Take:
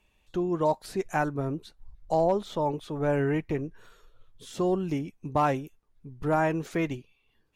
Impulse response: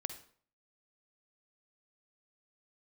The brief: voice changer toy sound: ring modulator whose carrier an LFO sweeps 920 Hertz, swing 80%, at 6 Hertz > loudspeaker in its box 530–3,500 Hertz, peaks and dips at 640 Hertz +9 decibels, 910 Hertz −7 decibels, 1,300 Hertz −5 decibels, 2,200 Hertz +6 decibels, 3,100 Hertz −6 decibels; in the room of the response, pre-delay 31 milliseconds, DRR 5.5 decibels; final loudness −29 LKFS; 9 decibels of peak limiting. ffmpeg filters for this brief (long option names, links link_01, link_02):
-filter_complex "[0:a]alimiter=limit=-23dB:level=0:latency=1,asplit=2[link_01][link_02];[1:a]atrim=start_sample=2205,adelay=31[link_03];[link_02][link_03]afir=irnorm=-1:irlink=0,volume=-5dB[link_04];[link_01][link_04]amix=inputs=2:normalize=0,aeval=exprs='val(0)*sin(2*PI*920*n/s+920*0.8/6*sin(2*PI*6*n/s))':channel_layout=same,highpass=530,equalizer=frequency=640:width_type=q:width=4:gain=9,equalizer=frequency=910:width_type=q:width=4:gain=-7,equalizer=frequency=1300:width_type=q:width=4:gain=-5,equalizer=frequency=2200:width_type=q:width=4:gain=6,equalizer=frequency=3100:width_type=q:width=4:gain=-6,lowpass=frequency=3500:width=0.5412,lowpass=frequency=3500:width=1.3066,volume=5.5dB"